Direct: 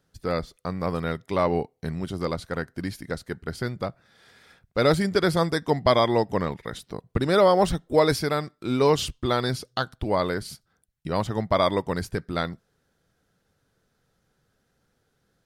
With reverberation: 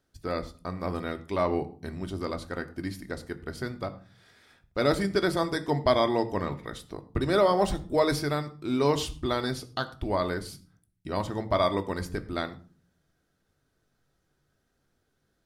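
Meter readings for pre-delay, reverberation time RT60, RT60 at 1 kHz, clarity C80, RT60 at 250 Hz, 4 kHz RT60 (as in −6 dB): 3 ms, 0.40 s, 0.40 s, 19.0 dB, 0.70 s, 0.30 s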